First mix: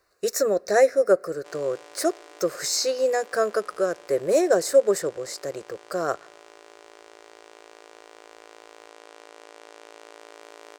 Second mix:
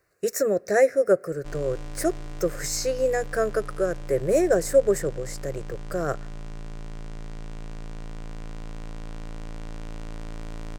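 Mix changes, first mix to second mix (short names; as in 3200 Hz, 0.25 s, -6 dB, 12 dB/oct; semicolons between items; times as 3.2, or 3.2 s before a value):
speech: add graphic EQ 125/1000/2000/4000 Hz +12/-7/+4/-10 dB; background: remove brick-wall FIR high-pass 320 Hz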